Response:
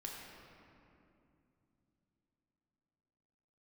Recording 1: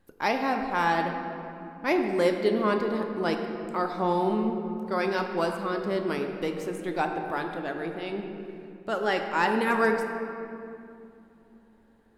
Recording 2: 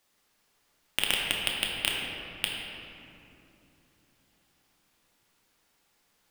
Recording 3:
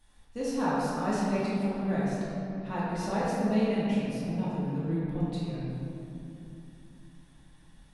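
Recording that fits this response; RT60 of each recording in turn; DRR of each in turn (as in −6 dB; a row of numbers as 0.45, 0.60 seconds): 2; non-exponential decay, 2.8 s, 2.7 s; 4.0, −2.5, −9.0 decibels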